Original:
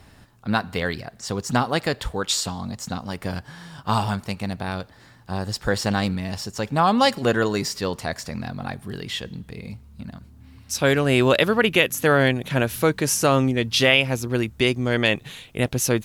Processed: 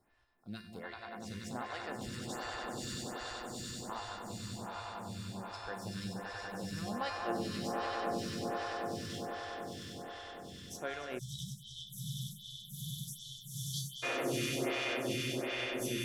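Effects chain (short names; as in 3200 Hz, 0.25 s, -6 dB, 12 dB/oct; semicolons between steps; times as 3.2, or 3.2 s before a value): resonator 350 Hz, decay 0.93 s, mix 90%; swelling echo 96 ms, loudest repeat 8, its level -5.5 dB; spectral delete 11.19–14.03, 200–3000 Hz; photocell phaser 1.3 Hz; gain -1 dB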